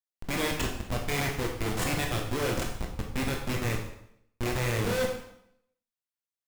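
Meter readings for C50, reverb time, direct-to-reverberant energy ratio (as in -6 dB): 5.5 dB, 0.75 s, 0.5 dB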